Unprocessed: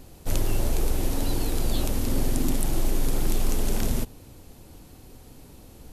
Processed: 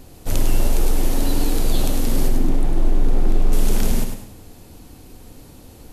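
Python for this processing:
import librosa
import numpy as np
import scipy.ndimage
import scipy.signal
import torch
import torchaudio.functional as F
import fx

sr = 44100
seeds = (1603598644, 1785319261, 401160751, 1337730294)

y = fx.lowpass(x, sr, hz=1200.0, slope=6, at=(2.28, 3.53))
y = fx.echo_feedback(y, sr, ms=101, feedback_pct=31, wet_db=-7)
y = fx.rev_gated(y, sr, seeds[0], gate_ms=220, shape='flat', drr_db=9.5)
y = F.gain(torch.from_numpy(y), 3.5).numpy()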